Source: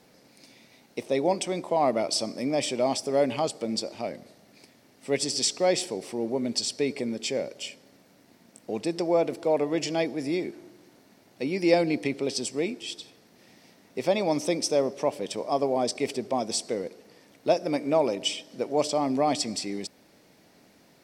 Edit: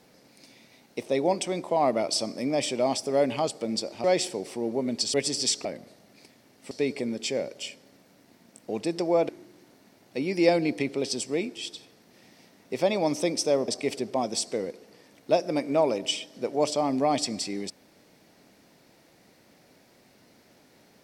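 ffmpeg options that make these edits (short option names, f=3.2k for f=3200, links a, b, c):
-filter_complex "[0:a]asplit=7[a][b][c][d][e][f][g];[a]atrim=end=4.042[h];[b]atrim=start=5.608:end=6.712[i];[c]atrim=start=5.098:end=5.612[j];[d]atrim=start=4.038:end=5.102[k];[e]atrim=start=6.708:end=9.292[l];[f]atrim=start=10.538:end=14.932[m];[g]atrim=start=15.848[n];[h][i]acrossfade=d=0.004:c1=hsin:c2=hsin[o];[o][j]acrossfade=d=0.004:c1=hsin:c2=hsin[p];[p][k]acrossfade=d=0.004:c1=hsin:c2=hsin[q];[q][l]acrossfade=d=0.004:c1=hsin:c2=hsin[r];[r][m]acrossfade=d=0.004:c1=hsin:c2=hsin[s];[s][n]acrossfade=d=0.004:c1=hsin:c2=hsin"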